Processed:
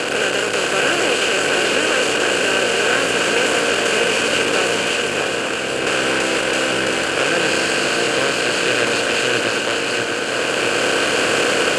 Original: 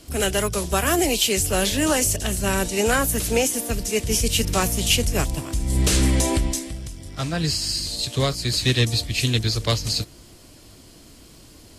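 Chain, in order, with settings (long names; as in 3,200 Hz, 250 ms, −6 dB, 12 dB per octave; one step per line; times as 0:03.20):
compressor on every frequency bin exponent 0.2
automatic gain control
tube saturation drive 14 dB, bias 0.75
loudspeaker in its box 260–8,100 Hz, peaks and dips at 500 Hz +6 dB, 1,500 Hz +7 dB, 2,500 Hz +8 dB, 3,800 Hz −7 dB, 5,700 Hz −7 dB
echo with a time of its own for lows and highs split 2,900 Hz, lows 647 ms, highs 395 ms, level −5 dB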